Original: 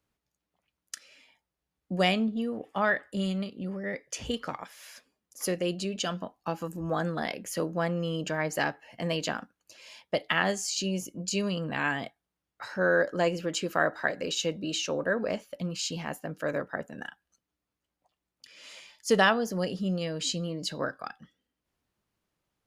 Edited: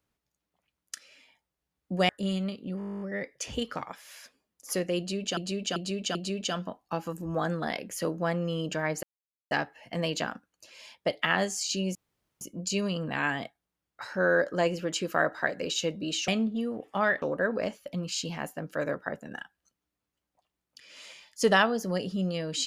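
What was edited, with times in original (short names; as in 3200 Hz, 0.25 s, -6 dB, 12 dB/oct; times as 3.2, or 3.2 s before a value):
2.09–3.03 move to 14.89
3.73 stutter 0.02 s, 12 plays
5.7–6.09 loop, 4 plays
8.58 insert silence 0.48 s
11.02 insert room tone 0.46 s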